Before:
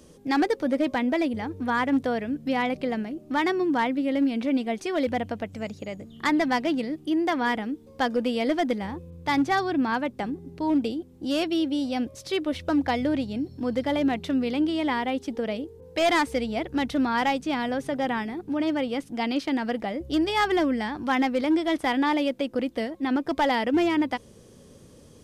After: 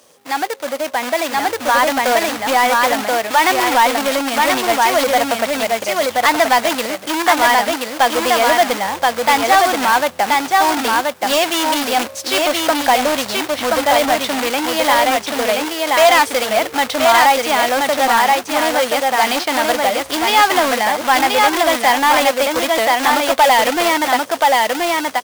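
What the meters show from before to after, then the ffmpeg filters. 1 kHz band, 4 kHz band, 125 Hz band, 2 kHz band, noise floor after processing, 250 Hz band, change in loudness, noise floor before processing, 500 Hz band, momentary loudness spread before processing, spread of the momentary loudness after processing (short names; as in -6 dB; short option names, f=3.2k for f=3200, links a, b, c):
+15.5 dB, +16.0 dB, n/a, +14.5 dB, -33 dBFS, +0.5 dB, +11.5 dB, -51 dBFS, +11.5 dB, 7 LU, 6 LU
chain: -filter_complex "[0:a]acrusher=bits=2:mode=log:mix=0:aa=0.000001,equalizer=f=140:t=o:w=1.2:g=-9,asplit=2[a][b];[b]aecho=0:1:1028:0.668[c];[a][c]amix=inputs=2:normalize=0,dynaudnorm=f=430:g=7:m=11.5dB,highpass=f=100:w=0.5412,highpass=f=100:w=1.3066,asoftclip=type=tanh:threshold=-13dB,lowshelf=f=480:t=q:w=1.5:g=-9.5,volume=6dB"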